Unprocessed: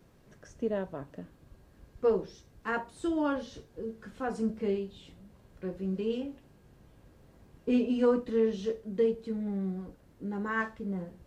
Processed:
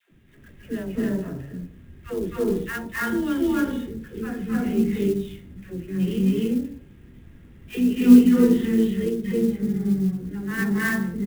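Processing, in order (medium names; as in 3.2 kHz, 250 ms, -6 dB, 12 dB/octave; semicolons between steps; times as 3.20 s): steep low-pass 3.7 kHz 96 dB/octave; band-stop 1.5 kHz, Q 19; harmony voices -5 st -15 dB; high-order bell 750 Hz -12.5 dB; de-hum 52.33 Hz, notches 20; phase dispersion lows, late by 109 ms, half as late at 600 Hz; wow and flutter 17 cents; reverberation RT60 0.50 s, pre-delay 250 ms, DRR -4.5 dB; sampling jitter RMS 0.025 ms; trim +6 dB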